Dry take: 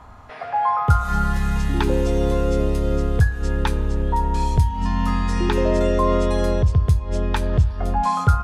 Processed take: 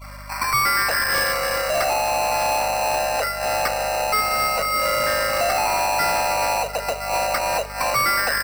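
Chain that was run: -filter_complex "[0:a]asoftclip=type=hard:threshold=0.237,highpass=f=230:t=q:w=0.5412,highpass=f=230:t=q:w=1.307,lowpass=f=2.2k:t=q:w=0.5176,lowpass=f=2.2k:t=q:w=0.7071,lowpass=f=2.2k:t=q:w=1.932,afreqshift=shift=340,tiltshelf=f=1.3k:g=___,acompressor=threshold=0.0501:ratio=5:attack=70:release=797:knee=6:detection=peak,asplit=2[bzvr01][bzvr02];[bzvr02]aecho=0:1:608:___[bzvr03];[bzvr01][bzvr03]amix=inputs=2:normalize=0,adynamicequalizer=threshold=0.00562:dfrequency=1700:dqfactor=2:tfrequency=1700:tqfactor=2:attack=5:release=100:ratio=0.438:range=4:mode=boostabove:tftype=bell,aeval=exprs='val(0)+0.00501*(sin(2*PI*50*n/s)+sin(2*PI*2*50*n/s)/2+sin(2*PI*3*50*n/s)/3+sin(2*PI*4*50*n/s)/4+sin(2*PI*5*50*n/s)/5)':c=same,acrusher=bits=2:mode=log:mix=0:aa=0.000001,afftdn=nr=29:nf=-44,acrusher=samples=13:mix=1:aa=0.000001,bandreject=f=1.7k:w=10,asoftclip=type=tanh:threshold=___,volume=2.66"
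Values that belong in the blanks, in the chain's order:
5.5, 0.133, 0.0596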